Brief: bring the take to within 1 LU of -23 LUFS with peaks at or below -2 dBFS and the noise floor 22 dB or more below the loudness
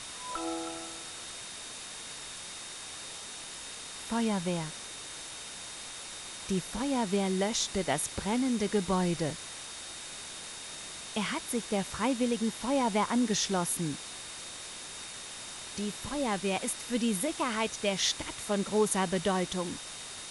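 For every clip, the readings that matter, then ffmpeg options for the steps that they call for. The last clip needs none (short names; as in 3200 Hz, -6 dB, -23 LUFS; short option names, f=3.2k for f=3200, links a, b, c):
steady tone 3700 Hz; tone level -49 dBFS; noise floor -43 dBFS; noise floor target -55 dBFS; loudness -33.0 LUFS; peak -14.5 dBFS; loudness target -23.0 LUFS
-> -af "bandreject=f=3.7k:w=30"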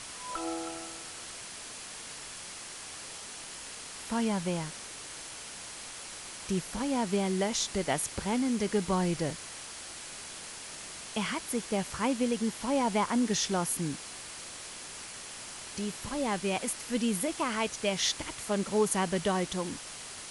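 steady tone none; noise floor -44 dBFS; noise floor target -55 dBFS
-> -af "afftdn=nr=11:nf=-44"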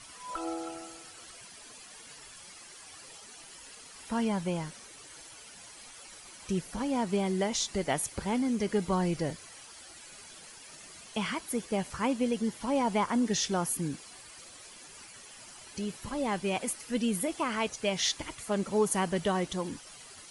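noise floor -50 dBFS; noise floor target -54 dBFS
-> -af "afftdn=nr=6:nf=-50"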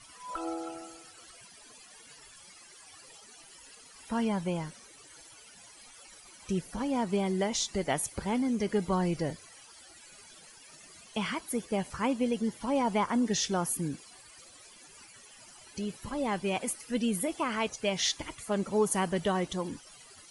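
noise floor -54 dBFS; loudness -31.5 LUFS; peak -16.5 dBFS; loudness target -23.0 LUFS
-> -af "volume=8.5dB"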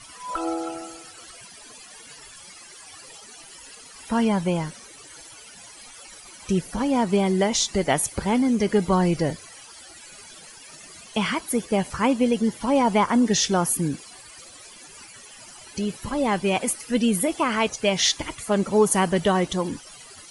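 loudness -23.0 LUFS; peak -8.0 dBFS; noise floor -46 dBFS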